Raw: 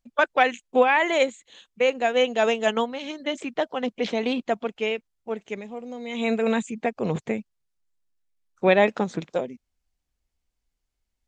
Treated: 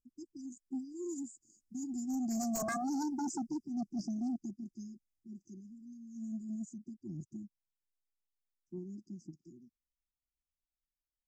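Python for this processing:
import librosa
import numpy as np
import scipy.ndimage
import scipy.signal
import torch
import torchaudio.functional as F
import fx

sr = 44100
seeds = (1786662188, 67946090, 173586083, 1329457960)

y = fx.doppler_pass(x, sr, speed_mps=11, closest_m=2.4, pass_at_s=2.77)
y = fx.brickwall_bandstop(y, sr, low_hz=370.0, high_hz=4700.0)
y = fx.fold_sine(y, sr, drive_db=15, ceiling_db=-24.5)
y = y * librosa.db_to_amplitude(-7.5)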